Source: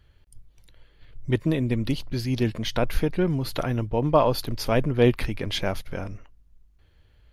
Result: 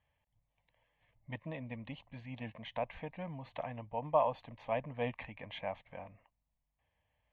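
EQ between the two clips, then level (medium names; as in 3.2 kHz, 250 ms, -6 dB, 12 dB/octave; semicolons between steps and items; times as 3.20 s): band-pass filter 1 kHz, Q 0.57; distance through air 190 m; static phaser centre 1.4 kHz, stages 6; -5.5 dB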